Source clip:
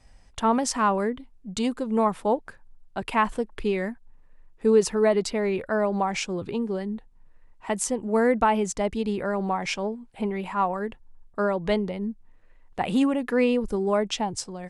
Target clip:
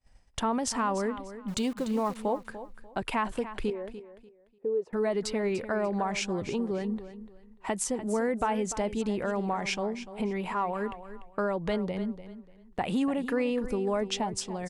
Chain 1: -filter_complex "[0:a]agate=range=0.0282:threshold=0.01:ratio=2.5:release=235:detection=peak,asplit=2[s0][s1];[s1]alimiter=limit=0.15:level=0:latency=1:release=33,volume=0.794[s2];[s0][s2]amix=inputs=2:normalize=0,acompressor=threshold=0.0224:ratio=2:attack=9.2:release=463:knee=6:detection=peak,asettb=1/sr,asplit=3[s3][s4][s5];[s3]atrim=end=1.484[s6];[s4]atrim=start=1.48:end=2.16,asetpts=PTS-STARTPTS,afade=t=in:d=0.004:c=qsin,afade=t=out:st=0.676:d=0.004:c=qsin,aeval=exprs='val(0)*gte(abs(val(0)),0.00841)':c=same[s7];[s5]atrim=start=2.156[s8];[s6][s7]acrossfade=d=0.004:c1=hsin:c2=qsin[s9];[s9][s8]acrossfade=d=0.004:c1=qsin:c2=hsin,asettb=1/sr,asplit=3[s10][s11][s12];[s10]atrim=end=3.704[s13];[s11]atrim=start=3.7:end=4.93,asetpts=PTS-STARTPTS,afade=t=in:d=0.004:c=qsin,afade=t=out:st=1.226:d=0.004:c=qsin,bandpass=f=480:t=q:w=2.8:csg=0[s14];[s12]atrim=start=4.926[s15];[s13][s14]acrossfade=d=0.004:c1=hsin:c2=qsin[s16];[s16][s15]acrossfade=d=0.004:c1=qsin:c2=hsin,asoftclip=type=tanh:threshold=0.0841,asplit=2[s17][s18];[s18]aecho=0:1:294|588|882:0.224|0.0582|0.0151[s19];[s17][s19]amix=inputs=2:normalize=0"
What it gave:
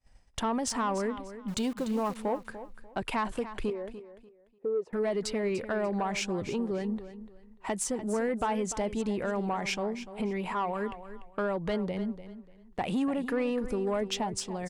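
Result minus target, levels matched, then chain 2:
saturation: distortion +22 dB
-filter_complex "[0:a]agate=range=0.0282:threshold=0.01:ratio=2.5:release=235:detection=peak,asplit=2[s0][s1];[s1]alimiter=limit=0.15:level=0:latency=1:release=33,volume=0.794[s2];[s0][s2]amix=inputs=2:normalize=0,acompressor=threshold=0.0224:ratio=2:attack=9.2:release=463:knee=6:detection=peak,asettb=1/sr,asplit=3[s3][s4][s5];[s3]atrim=end=1.484[s6];[s4]atrim=start=1.48:end=2.16,asetpts=PTS-STARTPTS,afade=t=in:d=0.004:c=qsin,afade=t=out:st=0.676:d=0.004:c=qsin,aeval=exprs='val(0)*gte(abs(val(0)),0.00841)':c=same[s7];[s5]atrim=start=2.156[s8];[s6][s7]acrossfade=d=0.004:c1=hsin:c2=qsin[s9];[s9][s8]acrossfade=d=0.004:c1=qsin:c2=hsin,asettb=1/sr,asplit=3[s10][s11][s12];[s10]atrim=end=3.704[s13];[s11]atrim=start=3.7:end=4.93,asetpts=PTS-STARTPTS,afade=t=in:d=0.004:c=qsin,afade=t=out:st=1.226:d=0.004:c=qsin,bandpass=f=480:t=q:w=2.8:csg=0[s14];[s12]atrim=start=4.926[s15];[s13][s14]acrossfade=d=0.004:c1=hsin:c2=qsin[s16];[s16][s15]acrossfade=d=0.004:c1=qsin:c2=hsin,asoftclip=type=tanh:threshold=0.335,asplit=2[s17][s18];[s18]aecho=0:1:294|588|882:0.224|0.0582|0.0151[s19];[s17][s19]amix=inputs=2:normalize=0"

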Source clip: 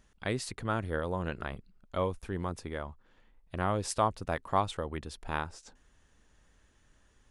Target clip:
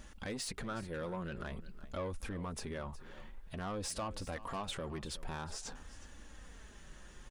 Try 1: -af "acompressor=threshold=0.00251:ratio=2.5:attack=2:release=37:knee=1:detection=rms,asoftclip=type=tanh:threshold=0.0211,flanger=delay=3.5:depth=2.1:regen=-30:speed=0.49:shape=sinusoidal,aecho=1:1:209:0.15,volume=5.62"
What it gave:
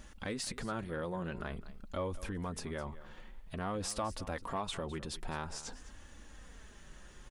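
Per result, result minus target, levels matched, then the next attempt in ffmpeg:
saturation: distortion -15 dB; echo 157 ms early
-af "acompressor=threshold=0.00251:ratio=2.5:attack=2:release=37:knee=1:detection=rms,asoftclip=type=tanh:threshold=0.00668,flanger=delay=3.5:depth=2.1:regen=-30:speed=0.49:shape=sinusoidal,aecho=1:1:209:0.15,volume=5.62"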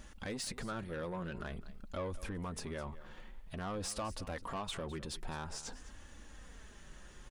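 echo 157 ms early
-af "acompressor=threshold=0.00251:ratio=2.5:attack=2:release=37:knee=1:detection=rms,asoftclip=type=tanh:threshold=0.00668,flanger=delay=3.5:depth=2.1:regen=-30:speed=0.49:shape=sinusoidal,aecho=1:1:366:0.15,volume=5.62"

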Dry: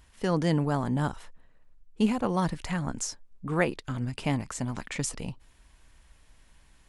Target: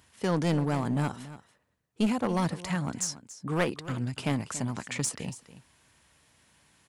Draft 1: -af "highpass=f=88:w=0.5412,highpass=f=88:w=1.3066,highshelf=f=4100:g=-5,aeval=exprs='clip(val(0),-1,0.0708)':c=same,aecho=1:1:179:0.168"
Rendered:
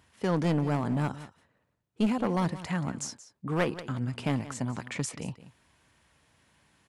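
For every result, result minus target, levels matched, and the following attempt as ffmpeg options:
echo 104 ms early; 8 kHz band -5.5 dB
-af "highpass=f=88:w=0.5412,highpass=f=88:w=1.3066,highshelf=f=4100:g=-5,aeval=exprs='clip(val(0),-1,0.0708)':c=same,aecho=1:1:283:0.168"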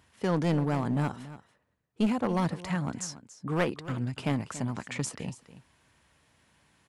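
8 kHz band -5.5 dB
-af "highpass=f=88:w=0.5412,highpass=f=88:w=1.3066,highshelf=f=4100:g=3,aeval=exprs='clip(val(0),-1,0.0708)':c=same,aecho=1:1:283:0.168"

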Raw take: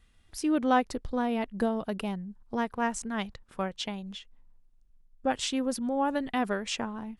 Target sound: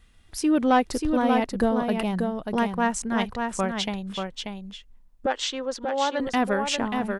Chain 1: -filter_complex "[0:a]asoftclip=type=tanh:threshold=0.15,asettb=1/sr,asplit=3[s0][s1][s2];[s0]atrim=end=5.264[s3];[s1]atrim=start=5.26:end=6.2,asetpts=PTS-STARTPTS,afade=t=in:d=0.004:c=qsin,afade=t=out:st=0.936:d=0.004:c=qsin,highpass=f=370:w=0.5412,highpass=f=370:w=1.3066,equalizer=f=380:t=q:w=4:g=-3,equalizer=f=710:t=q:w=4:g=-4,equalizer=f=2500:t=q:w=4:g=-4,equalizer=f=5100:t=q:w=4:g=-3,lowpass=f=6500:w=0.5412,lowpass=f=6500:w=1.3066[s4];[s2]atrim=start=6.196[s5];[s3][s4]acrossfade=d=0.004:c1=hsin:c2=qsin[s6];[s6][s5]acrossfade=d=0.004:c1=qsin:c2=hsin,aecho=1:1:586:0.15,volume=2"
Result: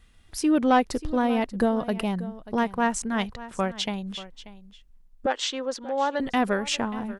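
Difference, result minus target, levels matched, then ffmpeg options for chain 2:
echo-to-direct -11.5 dB
-filter_complex "[0:a]asoftclip=type=tanh:threshold=0.15,asettb=1/sr,asplit=3[s0][s1][s2];[s0]atrim=end=5.264[s3];[s1]atrim=start=5.26:end=6.2,asetpts=PTS-STARTPTS,afade=t=in:d=0.004:c=qsin,afade=t=out:st=0.936:d=0.004:c=qsin,highpass=f=370:w=0.5412,highpass=f=370:w=1.3066,equalizer=f=380:t=q:w=4:g=-3,equalizer=f=710:t=q:w=4:g=-4,equalizer=f=2500:t=q:w=4:g=-4,equalizer=f=5100:t=q:w=4:g=-3,lowpass=f=6500:w=0.5412,lowpass=f=6500:w=1.3066[s4];[s2]atrim=start=6.196[s5];[s3][s4]acrossfade=d=0.004:c1=hsin:c2=qsin[s6];[s6][s5]acrossfade=d=0.004:c1=qsin:c2=hsin,aecho=1:1:586:0.562,volume=2"

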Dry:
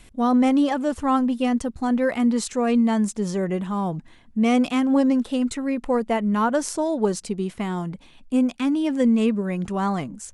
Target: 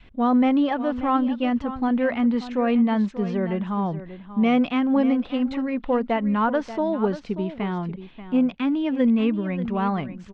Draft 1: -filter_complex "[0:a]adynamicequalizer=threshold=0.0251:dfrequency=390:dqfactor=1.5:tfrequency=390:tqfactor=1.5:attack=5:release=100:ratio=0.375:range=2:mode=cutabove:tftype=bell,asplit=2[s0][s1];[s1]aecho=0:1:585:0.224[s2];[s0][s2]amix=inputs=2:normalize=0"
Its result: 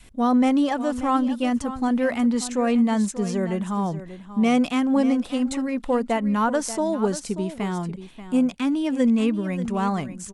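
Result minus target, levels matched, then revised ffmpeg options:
4 kHz band +2.5 dB
-filter_complex "[0:a]adynamicequalizer=threshold=0.0251:dfrequency=390:dqfactor=1.5:tfrequency=390:tqfactor=1.5:attack=5:release=100:ratio=0.375:range=2:mode=cutabove:tftype=bell,lowpass=f=3500:w=0.5412,lowpass=f=3500:w=1.3066,asplit=2[s0][s1];[s1]aecho=0:1:585:0.224[s2];[s0][s2]amix=inputs=2:normalize=0"

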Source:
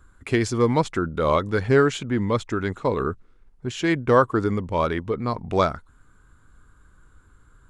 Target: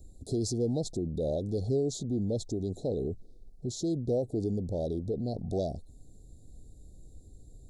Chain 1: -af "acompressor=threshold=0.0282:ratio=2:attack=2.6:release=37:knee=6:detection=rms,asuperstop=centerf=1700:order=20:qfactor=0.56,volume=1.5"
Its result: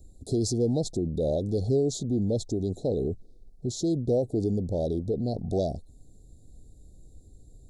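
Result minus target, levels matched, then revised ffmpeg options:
compression: peak gain reduction -4 dB
-af "acompressor=threshold=0.0106:ratio=2:attack=2.6:release=37:knee=6:detection=rms,asuperstop=centerf=1700:order=20:qfactor=0.56,volume=1.5"

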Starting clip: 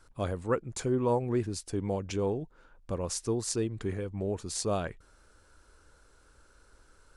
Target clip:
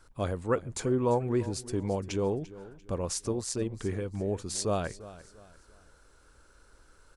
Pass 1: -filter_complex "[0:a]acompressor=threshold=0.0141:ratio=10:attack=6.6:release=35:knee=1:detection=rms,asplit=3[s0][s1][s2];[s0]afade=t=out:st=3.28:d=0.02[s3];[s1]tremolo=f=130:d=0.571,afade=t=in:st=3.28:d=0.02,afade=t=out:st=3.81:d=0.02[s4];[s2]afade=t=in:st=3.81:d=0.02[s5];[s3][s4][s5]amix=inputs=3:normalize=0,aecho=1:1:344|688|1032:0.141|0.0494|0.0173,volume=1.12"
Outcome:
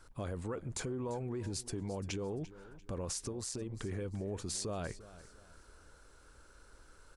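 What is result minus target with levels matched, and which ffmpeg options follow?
compression: peak gain reduction +15 dB
-filter_complex "[0:a]asplit=3[s0][s1][s2];[s0]afade=t=out:st=3.28:d=0.02[s3];[s1]tremolo=f=130:d=0.571,afade=t=in:st=3.28:d=0.02,afade=t=out:st=3.81:d=0.02[s4];[s2]afade=t=in:st=3.81:d=0.02[s5];[s3][s4][s5]amix=inputs=3:normalize=0,aecho=1:1:344|688|1032:0.141|0.0494|0.0173,volume=1.12"

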